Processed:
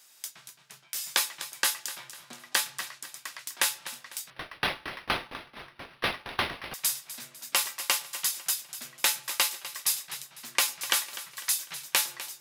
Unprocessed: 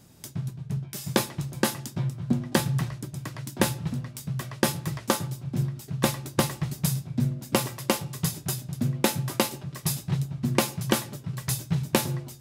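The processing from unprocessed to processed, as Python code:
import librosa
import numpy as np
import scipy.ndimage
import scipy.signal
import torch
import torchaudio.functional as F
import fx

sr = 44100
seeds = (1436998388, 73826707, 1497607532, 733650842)

y = scipy.signal.sosfilt(scipy.signal.butter(2, 1500.0, 'highpass', fs=sr, output='sos'), x)
y = fx.echo_feedback(y, sr, ms=250, feedback_pct=40, wet_db=-14.5)
y = fx.resample_linear(y, sr, factor=6, at=(4.3, 6.74))
y = y * librosa.db_to_amplitude(4.0)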